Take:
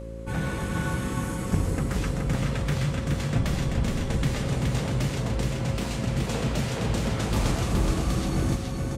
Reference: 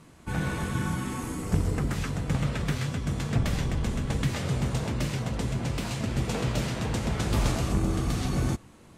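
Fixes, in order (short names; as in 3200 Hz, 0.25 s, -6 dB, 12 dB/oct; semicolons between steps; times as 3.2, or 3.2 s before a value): de-hum 56.1 Hz, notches 8; notch 540 Hz, Q 30; inverse comb 0.422 s -3.5 dB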